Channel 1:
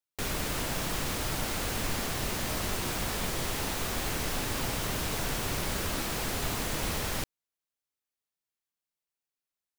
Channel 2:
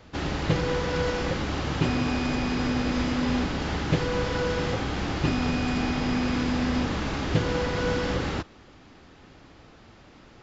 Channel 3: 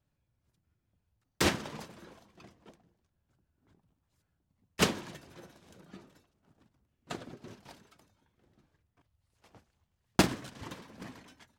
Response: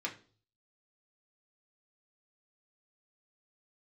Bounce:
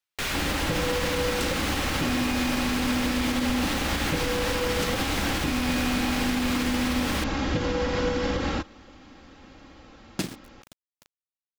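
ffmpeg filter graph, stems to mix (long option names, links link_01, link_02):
-filter_complex "[0:a]equalizer=frequency=2400:width=0.43:gain=10.5,volume=-1.5dB[link_01];[1:a]aecho=1:1:3.7:0.49,adelay=200,volume=1dB[link_02];[2:a]highpass=110,equalizer=frequency=910:width_type=o:width=2:gain=-10,aeval=exprs='val(0)*gte(abs(val(0)),0.0126)':channel_layout=same,volume=0.5dB[link_03];[link_01][link_02][link_03]amix=inputs=3:normalize=0,alimiter=limit=-16.5dB:level=0:latency=1:release=81"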